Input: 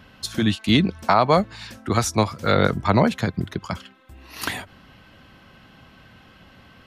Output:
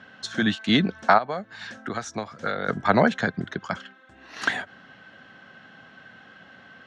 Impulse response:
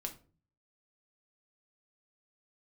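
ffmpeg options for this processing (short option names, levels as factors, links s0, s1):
-filter_complex "[0:a]asplit=3[s0][s1][s2];[s0]afade=t=out:st=1.17:d=0.02[s3];[s1]acompressor=threshold=0.0562:ratio=10,afade=t=in:st=1.17:d=0.02,afade=t=out:st=2.67:d=0.02[s4];[s2]afade=t=in:st=2.67:d=0.02[s5];[s3][s4][s5]amix=inputs=3:normalize=0,highpass=190,equalizer=f=330:t=q:w=4:g=-4,equalizer=f=730:t=q:w=4:g=3,equalizer=f=1000:t=q:w=4:g=-4,equalizer=f=1600:t=q:w=4:g=9,equalizer=f=2500:t=q:w=4:g=-5,equalizer=f=4800:t=q:w=4:g=-7,lowpass=f=6500:w=0.5412,lowpass=f=6500:w=1.3066"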